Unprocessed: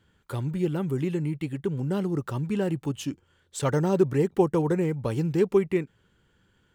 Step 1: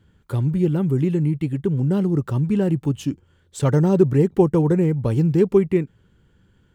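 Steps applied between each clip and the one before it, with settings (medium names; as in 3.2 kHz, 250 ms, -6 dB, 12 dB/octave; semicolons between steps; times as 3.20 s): bass shelf 380 Hz +10.5 dB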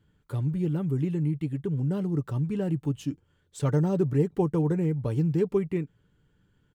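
comb 6.8 ms, depth 31%; trim -8.5 dB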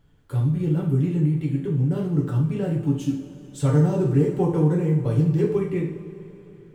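two-slope reverb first 0.52 s, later 3.8 s, from -18 dB, DRR -2.5 dB; added noise brown -61 dBFS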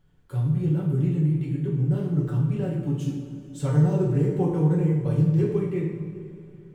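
simulated room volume 1200 m³, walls mixed, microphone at 1 m; trim -5 dB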